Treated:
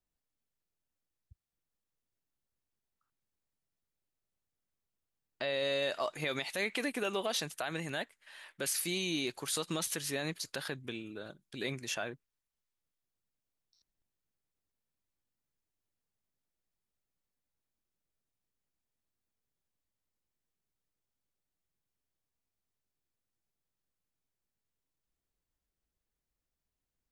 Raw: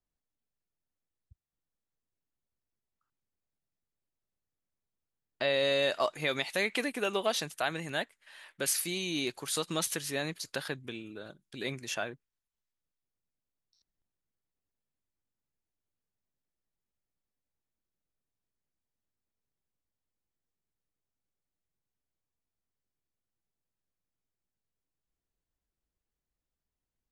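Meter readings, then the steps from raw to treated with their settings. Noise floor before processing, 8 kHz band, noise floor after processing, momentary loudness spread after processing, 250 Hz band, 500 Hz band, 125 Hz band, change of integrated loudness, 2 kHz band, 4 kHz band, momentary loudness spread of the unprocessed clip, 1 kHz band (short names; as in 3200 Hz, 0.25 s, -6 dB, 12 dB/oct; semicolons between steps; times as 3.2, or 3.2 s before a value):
under -85 dBFS, -2.5 dB, under -85 dBFS, 11 LU, -1.5 dB, -4.0 dB, -1.0 dB, -3.0 dB, -3.5 dB, -3.0 dB, 13 LU, -4.5 dB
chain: limiter -23 dBFS, peak gain reduction 7.5 dB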